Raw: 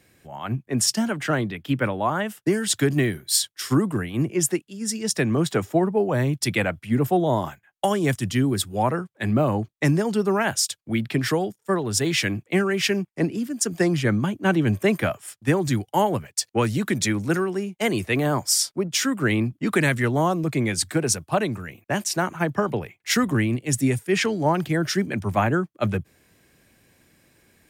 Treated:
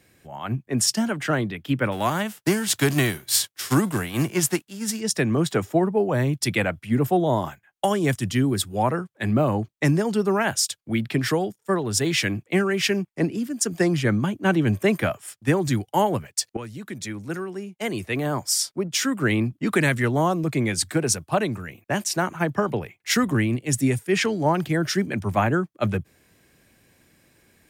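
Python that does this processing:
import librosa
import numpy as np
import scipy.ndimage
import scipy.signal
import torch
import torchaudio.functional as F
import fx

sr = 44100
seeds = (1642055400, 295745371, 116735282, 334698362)

y = fx.envelope_flatten(x, sr, power=0.6, at=(1.91, 4.99), fade=0.02)
y = fx.edit(y, sr, fx.fade_in_from(start_s=16.57, length_s=2.68, floor_db=-15.0), tone=tone)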